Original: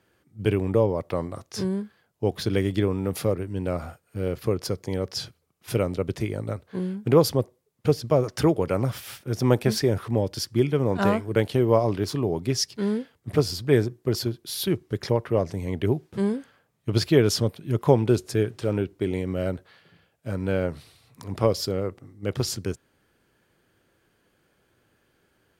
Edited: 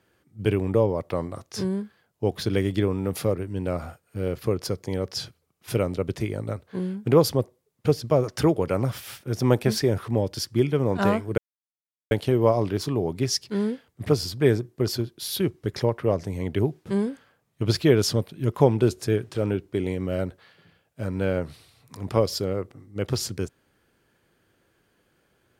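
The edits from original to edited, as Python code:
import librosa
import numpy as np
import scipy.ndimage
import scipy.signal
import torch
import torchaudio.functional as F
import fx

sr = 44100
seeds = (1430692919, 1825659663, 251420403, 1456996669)

y = fx.edit(x, sr, fx.insert_silence(at_s=11.38, length_s=0.73), tone=tone)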